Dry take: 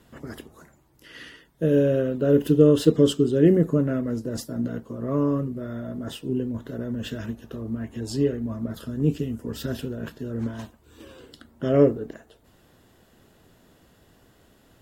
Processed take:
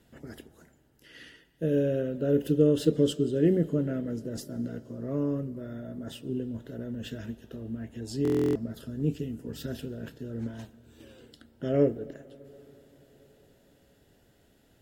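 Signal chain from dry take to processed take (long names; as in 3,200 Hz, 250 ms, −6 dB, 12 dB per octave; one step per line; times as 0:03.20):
parametric band 1,100 Hz −11 dB 0.35 octaves
on a send at −19 dB: convolution reverb RT60 4.6 s, pre-delay 85 ms
on the sum: buffer that repeats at 0:08.23, samples 1,024, times 13
level −6 dB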